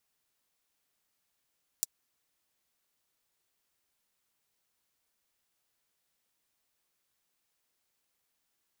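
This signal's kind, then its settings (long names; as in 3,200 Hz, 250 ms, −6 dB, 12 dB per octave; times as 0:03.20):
closed synth hi-hat, high-pass 6,000 Hz, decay 0.03 s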